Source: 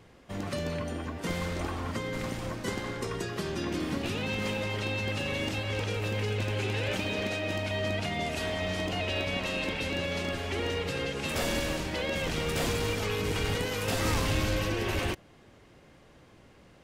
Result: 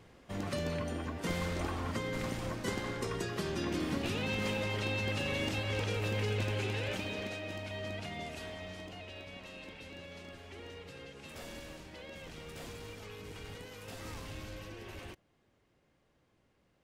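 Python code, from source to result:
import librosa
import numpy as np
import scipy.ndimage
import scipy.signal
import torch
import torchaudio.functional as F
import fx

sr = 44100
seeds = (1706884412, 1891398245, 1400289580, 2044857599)

y = fx.gain(x, sr, db=fx.line((6.41, -2.5), (7.52, -9.5), (8.19, -9.5), (9.14, -16.5)))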